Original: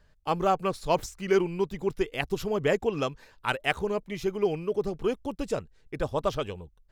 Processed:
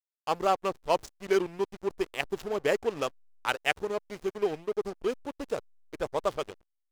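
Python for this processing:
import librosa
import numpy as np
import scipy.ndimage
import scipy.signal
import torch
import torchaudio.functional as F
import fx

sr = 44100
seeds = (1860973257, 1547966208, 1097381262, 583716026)

y = fx.backlash(x, sr, play_db=-28.5)
y = fx.bass_treble(y, sr, bass_db=-11, treble_db=5)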